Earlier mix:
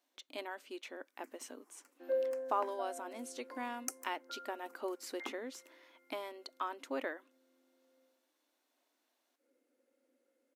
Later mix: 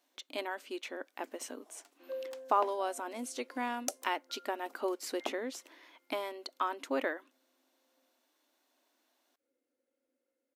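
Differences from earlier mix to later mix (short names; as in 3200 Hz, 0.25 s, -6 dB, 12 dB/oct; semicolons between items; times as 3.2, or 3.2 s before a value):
speech +5.5 dB; first sound: remove fixed phaser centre 1500 Hz, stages 4; second sound -7.0 dB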